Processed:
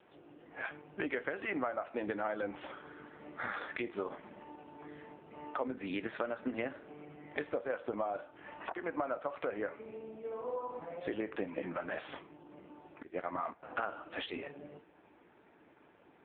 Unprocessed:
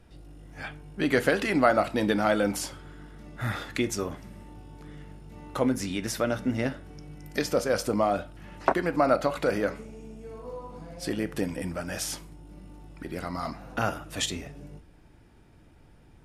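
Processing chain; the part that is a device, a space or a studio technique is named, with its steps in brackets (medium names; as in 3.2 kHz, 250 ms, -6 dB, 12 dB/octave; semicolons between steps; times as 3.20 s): 13.02–13.63 s: gate -33 dBFS, range -16 dB; voicemail (band-pass 380–2600 Hz; compression 10:1, threshold -36 dBFS, peak gain reduction 20 dB; trim +4.5 dB; AMR-NB 5.9 kbps 8 kHz)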